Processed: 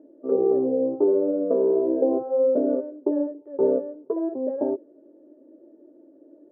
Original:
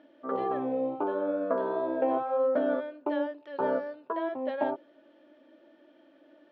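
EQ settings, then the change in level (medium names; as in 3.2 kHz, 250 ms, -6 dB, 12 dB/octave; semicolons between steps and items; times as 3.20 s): resonant low-pass 420 Hz, resonance Q 4.1; distance through air 240 m; +3.0 dB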